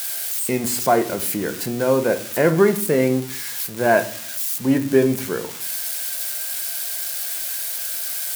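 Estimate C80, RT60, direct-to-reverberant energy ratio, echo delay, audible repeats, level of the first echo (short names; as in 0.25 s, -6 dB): 19.0 dB, 0.50 s, 7.5 dB, none, none, none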